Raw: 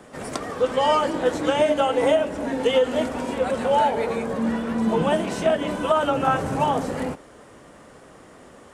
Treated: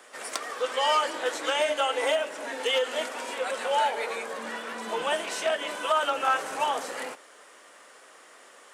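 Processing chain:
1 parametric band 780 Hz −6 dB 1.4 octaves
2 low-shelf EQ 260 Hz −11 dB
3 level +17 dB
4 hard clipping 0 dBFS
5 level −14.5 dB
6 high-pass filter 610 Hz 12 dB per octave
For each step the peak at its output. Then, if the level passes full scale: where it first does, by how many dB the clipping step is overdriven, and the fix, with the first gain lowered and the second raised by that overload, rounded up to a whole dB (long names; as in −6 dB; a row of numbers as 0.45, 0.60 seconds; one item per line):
−10.0, −13.0, +4.0, 0.0, −14.5, −11.0 dBFS
step 3, 4.0 dB
step 3 +13 dB, step 5 −10.5 dB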